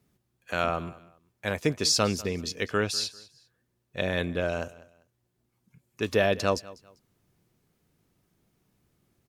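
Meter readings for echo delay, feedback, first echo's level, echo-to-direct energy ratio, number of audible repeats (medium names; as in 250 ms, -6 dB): 197 ms, 28%, -20.0 dB, -19.5 dB, 2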